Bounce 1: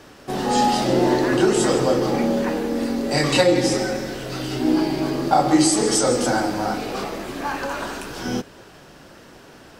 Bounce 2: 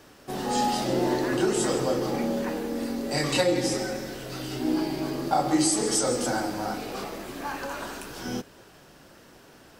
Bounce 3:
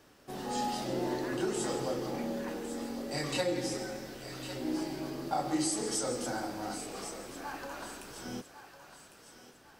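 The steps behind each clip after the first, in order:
high-shelf EQ 10,000 Hz +9 dB; level −7 dB
feedback echo with a high-pass in the loop 1,103 ms, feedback 43%, high-pass 660 Hz, level −10.5 dB; level −8.5 dB

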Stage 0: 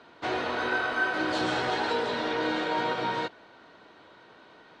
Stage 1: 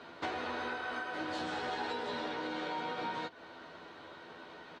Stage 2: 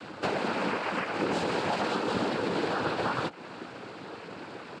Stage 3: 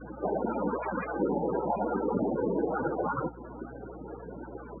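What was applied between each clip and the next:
downward compressor 12 to 1, threshold −37 dBFS, peak gain reduction 15 dB; double-tracking delay 12 ms −5.5 dB; level +1.5 dB
low-shelf EQ 330 Hz +10 dB; cochlear-implant simulation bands 8; level +6.5 dB
spectral peaks only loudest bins 16; mains hum 60 Hz, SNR 18 dB; level +2.5 dB

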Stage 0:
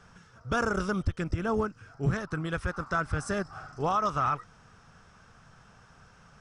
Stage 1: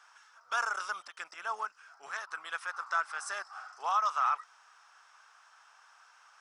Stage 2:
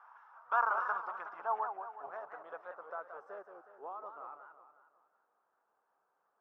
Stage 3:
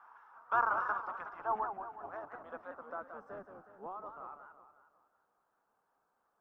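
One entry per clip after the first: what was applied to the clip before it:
Chebyshev high-pass filter 890 Hz, order 3
low-pass filter sweep 1,000 Hz → 350 Hz, 0:00.78–0:04.20; feedback echo with a swinging delay time 183 ms, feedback 50%, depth 214 cents, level −8 dB
sub-octave generator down 1 octave, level 0 dB

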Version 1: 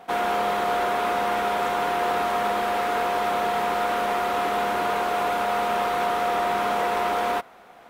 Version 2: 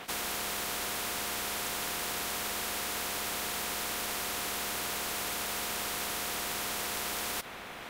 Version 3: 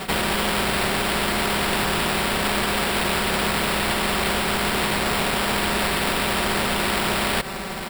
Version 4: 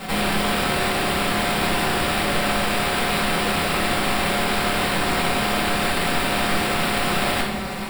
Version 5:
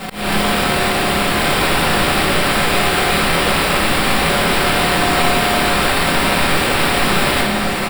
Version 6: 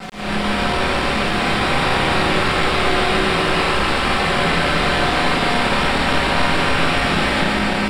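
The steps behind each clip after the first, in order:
every bin compressed towards the loudest bin 4 to 1; level −7 dB
low-shelf EQ 350 Hz +9 dB; comb filter 5.2 ms, depth 99%; sample-rate reduction 6,300 Hz, jitter 0%; level +8.5 dB
rectangular room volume 360 cubic metres, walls mixed, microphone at 2.1 metres; level −5.5 dB
volume swells 238 ms; single-tap delay 1,123 ms −5 dB; level +5.5 dB
feedback delay that plays each chunk backwards 146 ms, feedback 81%, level −4 dB; bit reduction 5 bits; high-frequency loss of the air 76 metres; level −4.5 dB

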